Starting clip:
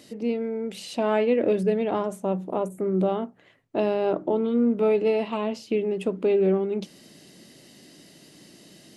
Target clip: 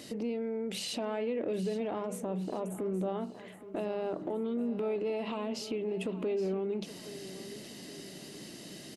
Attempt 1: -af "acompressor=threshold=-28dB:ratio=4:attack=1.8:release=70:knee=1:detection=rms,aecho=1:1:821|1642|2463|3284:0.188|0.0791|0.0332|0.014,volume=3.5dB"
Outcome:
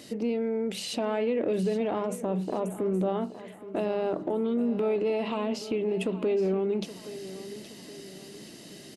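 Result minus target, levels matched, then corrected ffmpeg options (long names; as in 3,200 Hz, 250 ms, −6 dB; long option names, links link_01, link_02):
downward compressor: peak gain reduction −6 dB
-af "acompressor=threshold=-36dB:ratio=4:attack=1.8:release=70:knee=1:detection=rms,aecho=1:1:821|1642|2463|3284:0.188|0.0791|0.0332|0.014,volume=3.5dB"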